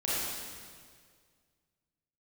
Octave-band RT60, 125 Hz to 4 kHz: 2.4 s, 2.0 s, 2.0 s, 1.8 s, 1.8 s, 1.7 s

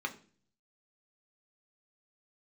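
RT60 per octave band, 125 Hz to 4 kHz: 0.85 s, 0.70 s, 0.50 s, 0.35 s, 0.40 s, 0.45 s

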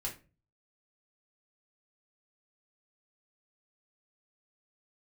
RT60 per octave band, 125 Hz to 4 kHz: 0.65 s, 0.50 s, 0.40 s, 0.30 s, 0.30 s, 0.25 s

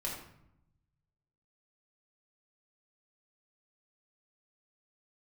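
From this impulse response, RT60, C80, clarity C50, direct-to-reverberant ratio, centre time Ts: 0.75 s, 6.5 dB, 3.5 dB, -4.5 dB, 41 ms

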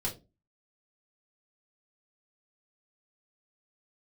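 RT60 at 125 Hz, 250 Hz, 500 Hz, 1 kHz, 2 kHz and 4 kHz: 0.40 s, 0.40 s, 0.30 s, 0.25 s, 0.20 s, 0.20 s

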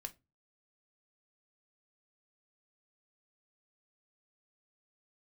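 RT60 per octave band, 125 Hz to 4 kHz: 0.45 s, 0.35 s, 0.25 s, 0.20 s, 0.20 s, 0.15 s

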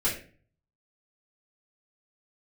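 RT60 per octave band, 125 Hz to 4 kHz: 0.80 s, 0.55 s, 0.45 s, 0.35 s, 0.40 s, 0.30 s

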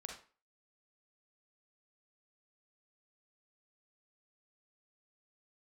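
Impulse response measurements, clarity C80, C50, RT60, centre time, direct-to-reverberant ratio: 10.0 dB, 4.0 dB, 0.40 s, 30 ms, 1.0 dB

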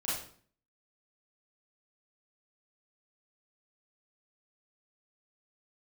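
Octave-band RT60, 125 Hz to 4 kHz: 0.65 s, 0.65 s, 0.50 s, 0.50 s, 0.45 s, 0.40 s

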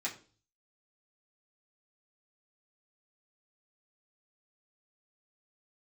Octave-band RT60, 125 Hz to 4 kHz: 0.70 s, 0.50 s, 0.45 s, 0.35 s, 0.35 s, 0.40 s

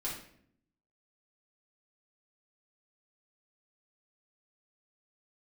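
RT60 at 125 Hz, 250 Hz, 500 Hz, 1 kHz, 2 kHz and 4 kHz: 1.0 s, 1.0 s, 0.70 s, 0.55 s, 0.60 s, 0.50 s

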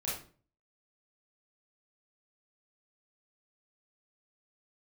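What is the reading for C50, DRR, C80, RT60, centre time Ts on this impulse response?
2.5 dB, -8.0 dB, 9.0 dB, 0.40 s, 45 ms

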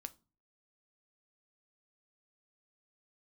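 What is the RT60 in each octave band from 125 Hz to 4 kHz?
0.60 s, 0.50 s, 0.35 s, 0.35 s, 0.25 s, 0.25 s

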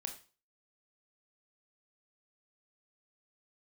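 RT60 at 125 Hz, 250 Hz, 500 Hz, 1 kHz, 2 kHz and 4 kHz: 0.40 s, 0.35 s, 0.40 s, 0.35 s, 0.35 s, 0.35 s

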